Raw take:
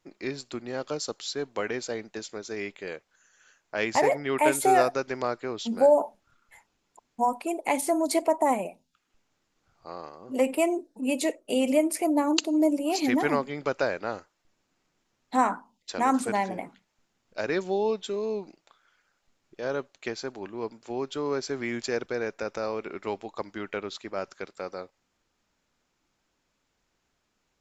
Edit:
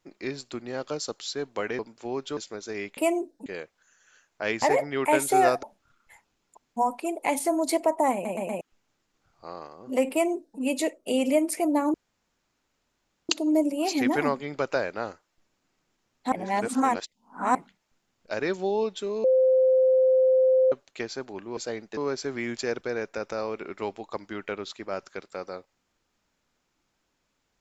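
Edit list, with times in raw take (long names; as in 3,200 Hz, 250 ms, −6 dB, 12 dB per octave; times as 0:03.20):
0:01.79–0:02.19: swap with 0:20.64–0:21.22
0:04.96–0:06.05: remove
0:08.55: stutter in place 0.12 s, 4 plays
0:10.53–0:11.02: duplicate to 0:02.79
0:12.36: splice in room tone 1.35 s
0:15.39–0:16.62: reverse
0:18.31–0:19.79: beep over 519 Hz −16.5 dBFS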